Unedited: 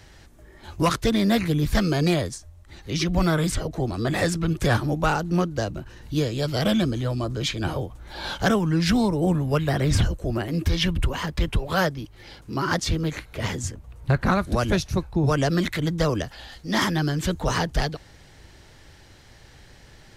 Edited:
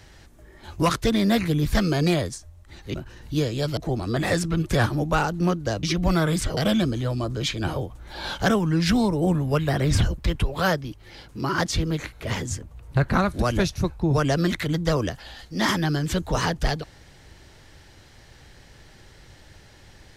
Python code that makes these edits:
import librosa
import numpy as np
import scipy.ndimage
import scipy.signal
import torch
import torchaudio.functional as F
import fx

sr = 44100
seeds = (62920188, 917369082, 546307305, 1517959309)

y = fx.edit(x, sr, fx.swap(start_s=2.94, length_s=0.74, other_s=5.74, other_length_s=0.83),
    fx.cut(start_s=10.18, length_s=1.13), tone=tone)